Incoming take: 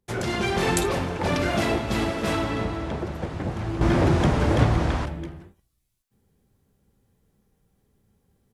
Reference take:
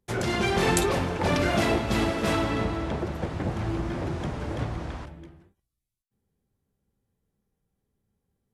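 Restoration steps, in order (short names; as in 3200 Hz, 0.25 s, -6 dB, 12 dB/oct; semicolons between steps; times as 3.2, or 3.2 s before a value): inverse comb 80 ms -22.5 dB; gain correction -11 dB, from 3.81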